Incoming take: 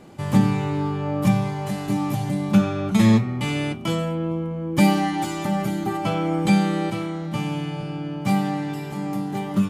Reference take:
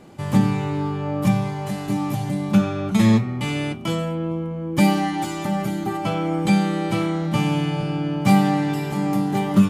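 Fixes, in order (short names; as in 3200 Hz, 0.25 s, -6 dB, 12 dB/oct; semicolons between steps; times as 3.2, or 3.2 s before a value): gain 0 dB, from 6.9 s +5.5 dB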